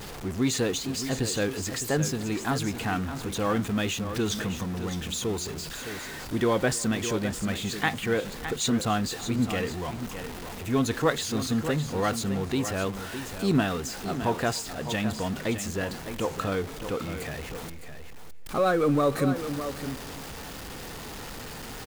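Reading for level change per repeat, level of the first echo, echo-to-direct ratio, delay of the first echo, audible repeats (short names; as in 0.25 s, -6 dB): no steady repeat, -21.5 dB, -9.5 dB, 0.293 s, 3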